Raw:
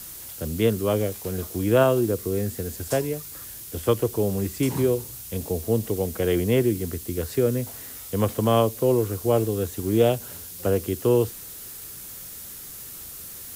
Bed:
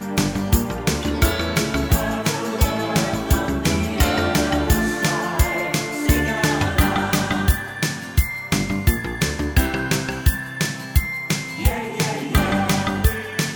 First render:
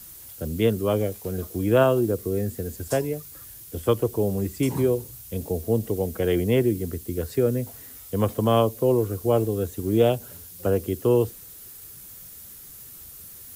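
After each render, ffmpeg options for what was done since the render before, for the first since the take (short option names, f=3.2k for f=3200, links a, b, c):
-af "afftdn=nr=7:nf=-40"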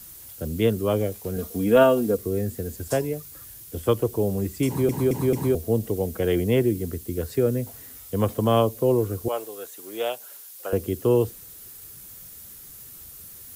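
-filter_complex "[0:a]asettb=1/sr,asplit=3[a][b][c];[a]atrim=end=1.364[d];[b]atrim=start=1.36:end=2.17,asetpts=PTS-STARTPTS,afade=t=in:d=0.004:c=qsin,afade=t=out:st=0.806:d=0.004:c=qsin,aecho=1:1:4.3:0.7,atrim=end_sample=35721[e];[c]atrim=start=2.166[f];[d][e]acrossfade=d=0.004:c1=hsin:c2=qsin[g];[g][f]acrossfade=d=0.004:c1=qsin:c2=hsin,asettb=1/sr,asplit=3[h][i][j];[h]atrim=end=9.284[k];[i]atrim=start=9.28:end=10.73,asetpts=PTS-STARTPTS,afade=t=in:d=0.004:c=qsin,afade=t=out:st=1.446:d=0.004:c=qsin,highpass=780[l];[j]atrim=start=10.726[m];[k][l]acrossfade=d=0.004:c1=hsin:c2=qsin[n];[n][m]acrossfade=d=0.004:c1=qsin:c2=hsin,asplit=5[o][p][q][r][s];[o]atrim=end=4.892[t];[p]atrim=start=4.668:end=4.892[u];[q]atrim=start=4.668:end=4.892[v];[r]atrim=start=4.668:end=4.892[w];[s]atrim=start=5.548[x];[t][u]acrossfade=d=0.004:c1=hsin:c2=hsin[y];[y][v]acrossfade=d=0.004:c1=hsin:c2=hsin[z];[z][w]acrossfade=d=0.004:c1=hsin:c2=hsin[aa];[aa][x]acrossfade=d=0.004:c1=hsin:c2=hsin"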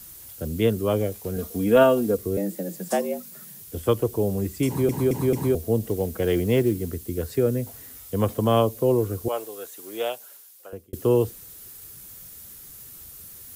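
-filter_complex "[0:a]asettb=1/sr,asplit=3[a][b][c];[a]atrim=end=2.374[d];[b]atrim=start=2.37:end=3.62,asetpts=PTS-STARTPTS,afade=t=in:d=0.004:c=qsin,afade=t=out:st=1.246:d=0.004:c=qsin,afreqshift=94[e];[c]atrim=start=3.616[f];[d][e]acrossfade=d=0.004:c1=hsin:c2=qsin[g];[g][f]acrossfade=d=0.004:c1=qsin:c2=hsin,asettb=1/sr,asplit=3[h][i][j];[h]atrim=end=5.824[k];[i]atrim=start=5.82:end=6.94,asetpts=PTS-STARTPTS,afade=t=in:d=0.004:c=qsin,afade=t=out:st=1.116:d=0.004:c=qsin,acrusher=bits=7:mode=log:mix=0:aa=0.000001[l];[j]atrim=start=6.936[m];[k][l]acrossfade=d=0.004:c1=hsin:c2=qsin[n];[n][m]acrossfade=d=0.004:c1=qsin:c2=hsin,asplit=2[o][p];[o]atrim=end=10.93,asetpts=PTS-STARTPTS,afade=t=out:st=10.02:d=0.91[q];[p]atrim=start=10.93,asetpts=PTS-STARTPTS,afade=t=in:d=0.004:c=hsin[r];[q][r]concat=n=2:v=0:a=1"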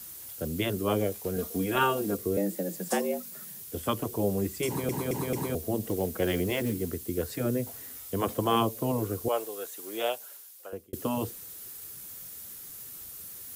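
-af "afftfilt=real='re*lt(hypot(re,im),0.562)':imag='im*lt(hypot(re,im),0.562)':win_size=1024:overlap=0.75,lowshelf=f=120:g=-10.5"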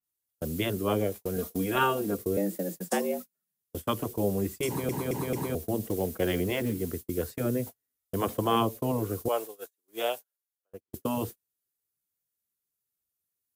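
-af "agate=range=-42dB:threshold=-35dB:ratio=16:detection=peak,adynamicequalizer=threshold=0.00631:dfrequency=3400:dqfactor=0.7:tfrequency=3400:tqfactor=0.7:attack=5:release=100:ratio=0.375:range=2.5:mode=cutabove:tftype=highshelf"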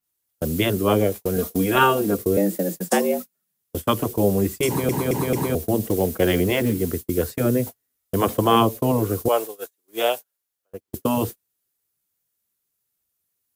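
-af "volume=8.5dB"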